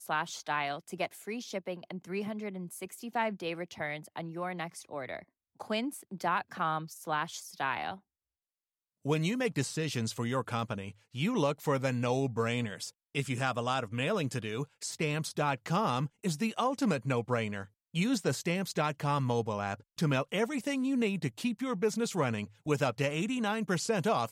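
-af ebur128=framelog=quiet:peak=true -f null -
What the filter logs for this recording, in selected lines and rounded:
Integrated loudness:
  I:         -33.3 LUFS
  Threshold: -43.4 LUFS
Loudness range:
  LRA:         5.6 LU
  Threshold: -53.5 LUFS
  LRA low:   -37.5 LUFS
  LRA high:  -31.9 LUFS
True peak:
  Peak:      -16.0 dBFS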